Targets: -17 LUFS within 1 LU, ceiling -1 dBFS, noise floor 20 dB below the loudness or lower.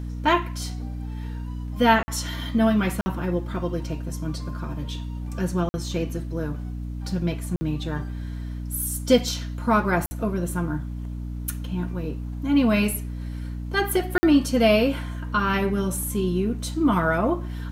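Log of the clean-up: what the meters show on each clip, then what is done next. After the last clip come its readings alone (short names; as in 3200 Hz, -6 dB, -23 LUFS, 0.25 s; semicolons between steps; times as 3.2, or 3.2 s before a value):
dropouts 6; longest dropout 50 ms; hum 60 Hz; harmonics up to 300 Hz; hum level -29 dBFS; loudness -25.0 LUFS; peak -5.5 dBFS; loudness target -17.0 LUFS
-> interpolate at 2.03/3.01/5.69/7.56/10.06/14.18, 50 ms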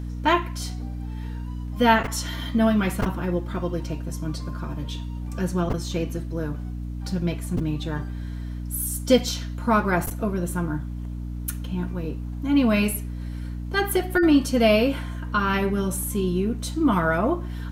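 dropouts 0; hum 60 Hz; harmonics up to 300 Hz; hum level -29 dBFS
-> de-hum 60 Hz, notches 5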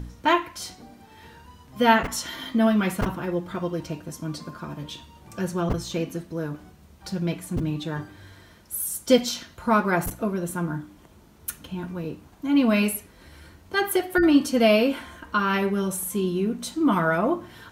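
hum none; loudness -25.0 LUFS; peak -5.0 dBFS; loudness target -17.0 LUFS
-> gain +8 dB; limiter -1 dBFS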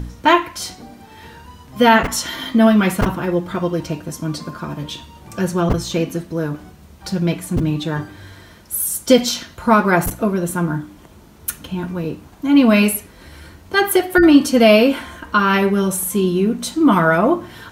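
loudness -17.0 LUFS; peak -1.0 dBFS; noise floor -44 dBFS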